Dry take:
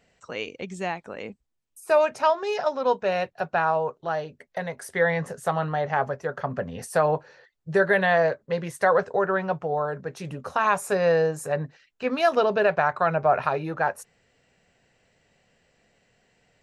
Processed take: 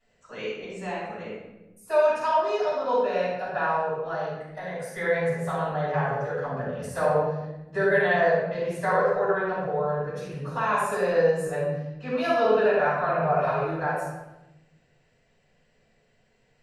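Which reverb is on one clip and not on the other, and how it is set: shoebox room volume 440 m³, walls mixed, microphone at 8.9 m; gain -18.5 dB

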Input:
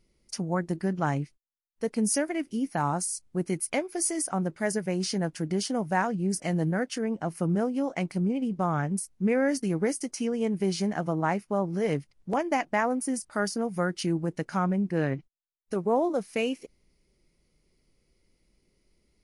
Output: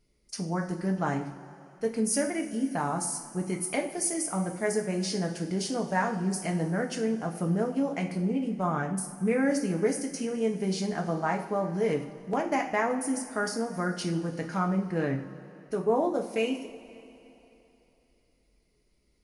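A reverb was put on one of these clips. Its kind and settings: two-slope reverb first 0.44 s, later 3.2 s, from -17 dB, DRR 1.5 dB; gain -3 dB

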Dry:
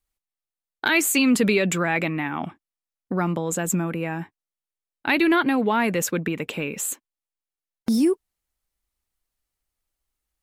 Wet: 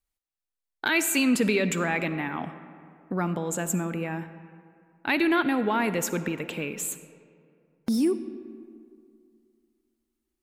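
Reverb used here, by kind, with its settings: digital reverb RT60 2.4 s, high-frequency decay 0.5×, pre-delay 15 ms, DRR 11.5 dB; gain -4 dB

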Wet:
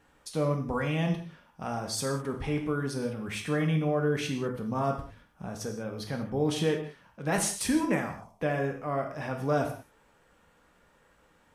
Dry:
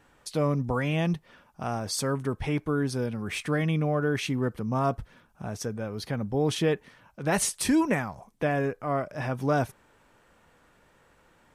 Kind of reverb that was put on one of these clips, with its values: non-linear reverb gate 0.22 s falling, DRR 3 dB; gain -4 dB

